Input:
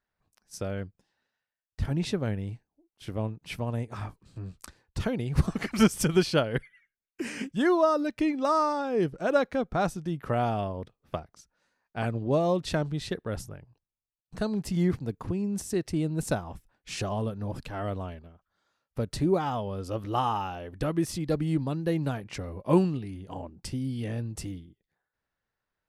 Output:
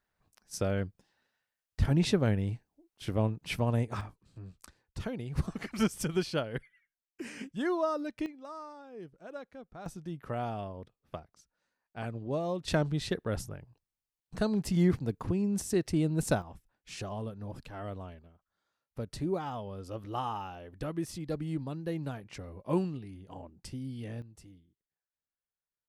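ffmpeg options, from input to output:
ffmpeg -i in.wav -af "asetnsamples=nb_out_samples=441:pad=0,asendcmd='4.01 volume volume -7.5dB;8.26 volume volume -19.5dB;9.86 volume volume -8dB;12.68 volume volume 0dB;16.42 volume volume -7.5dB;24.22 volume volume -17.5dB',volume=2.5dB" out.wav

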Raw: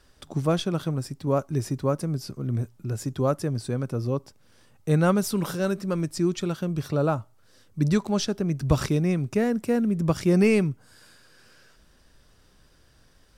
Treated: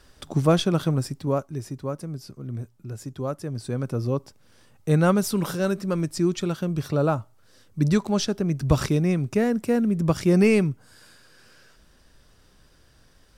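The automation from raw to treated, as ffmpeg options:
ffmpeg -i in.wav -af "volume=11.5dB,afade=type=out:start_time=1.01:duration=0.51:silence=0.316228,afade=type=in:start_time=3.42:duration=0.47:silence=0.446684" out.wav

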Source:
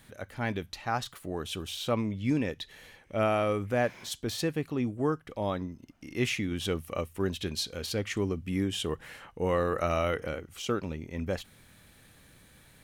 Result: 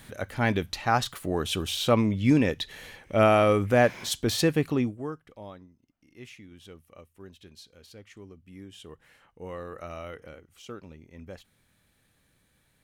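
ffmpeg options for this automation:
ffmpeg -i in.wav -af "volume=13dB,afade=type=out:start_time=4.72:duration=0.25:silence=0.237137,afade=type=out:start_time=4.97:duration=0.7:silence=0.266073,afade=type=in:start_time=8.45:duration=0.98:silence=0.501187" out.wav

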